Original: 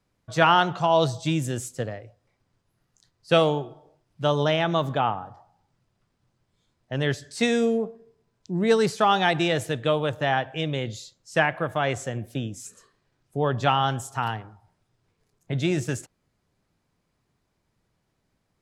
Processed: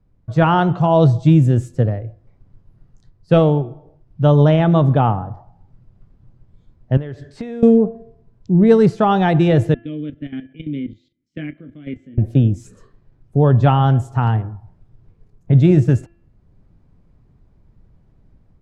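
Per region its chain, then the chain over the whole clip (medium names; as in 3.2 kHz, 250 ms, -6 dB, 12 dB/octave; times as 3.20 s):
6.97–7.63 s: tone controls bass -7 dB, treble -9 dB + compression 10:1, threshold -36 dBFS
9.74–12.18 s: vowel filter i + doubling 20 ms -7 dB + level held to a coarse grid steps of 13 dB
whole clip: tilt EQ -4.5 dB/octave; level rider gain up to 7 dB; de-hum 340.5 Hz, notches 9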